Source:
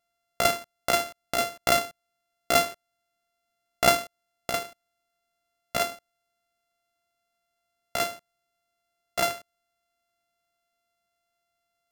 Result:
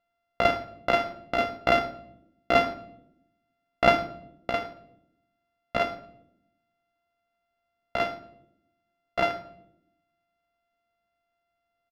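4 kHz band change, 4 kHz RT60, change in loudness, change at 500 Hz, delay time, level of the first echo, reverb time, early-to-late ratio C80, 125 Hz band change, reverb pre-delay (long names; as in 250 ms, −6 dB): −5.5 dB, 0.50 s, 0.0 dB, +2.0 dB, 113 ms, −23.0 dB, 0.75 s, 16.5 dB, +2.0 dB, 3 ms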